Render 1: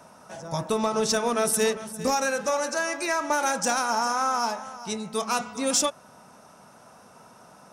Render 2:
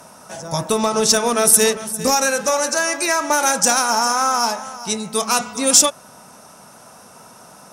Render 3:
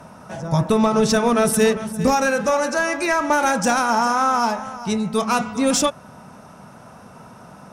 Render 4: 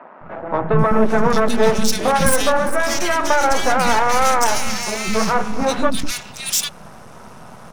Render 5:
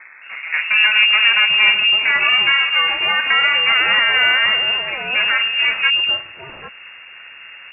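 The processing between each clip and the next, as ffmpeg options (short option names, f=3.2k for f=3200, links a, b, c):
-af "aemphasis=mode=production:type=cd,volume=6.5dB"
-af "bass=f=250:g=9,treble=f=4k:g=-13,acontrast=25,volume=-4.5dB"
-filter_complex "[0:a]aeval=exprs='max(val(0),0)':c=same,acrossover=split=280|2100[a][b][c];[a]adelay=210[d];[c]adelay=790[e];[d][b][e]amix=inputs=3:normalize=0,volume=8dB"
-af "lowpass=f=2.4k:t=q:w=0.5098,lowpass=f=2.4k:t=q:w=0.6013,lowpass=f=2.4k:t=q:w=0.9,lowpass=f=2.4k:t=q:w=2.563,afreqshift=-2800"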